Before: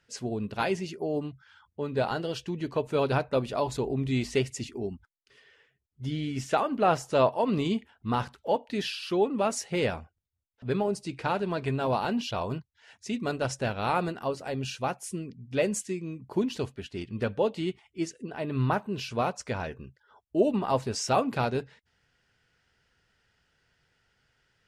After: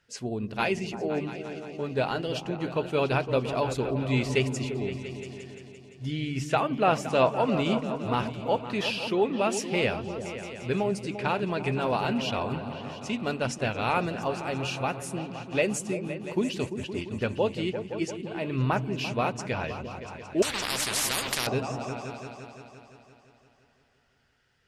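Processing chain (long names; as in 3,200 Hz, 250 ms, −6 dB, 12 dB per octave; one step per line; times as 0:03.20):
dynamic equaliser 2,500 Hz, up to +7 dB, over −53 dBFS, Q 2.5
echo whose low-pass opens from repeat to repeat 172 ms, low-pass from 200 Hz, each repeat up 2 octaves, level −6 dB
0:20.42–0:21.47: every bin compressed towards the loudest bin 10 to 1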